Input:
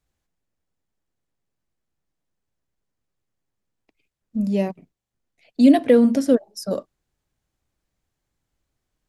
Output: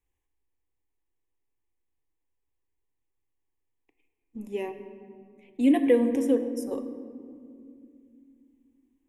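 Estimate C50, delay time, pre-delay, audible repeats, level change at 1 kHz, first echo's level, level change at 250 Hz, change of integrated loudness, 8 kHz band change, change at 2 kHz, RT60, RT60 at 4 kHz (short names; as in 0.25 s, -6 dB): 10.0 dB, none, 3 ms, none, -8.0 dB, none, -7.5 dB, -7.0 dB, n/a, -5.0 dB, 2.4 s, 1.1 s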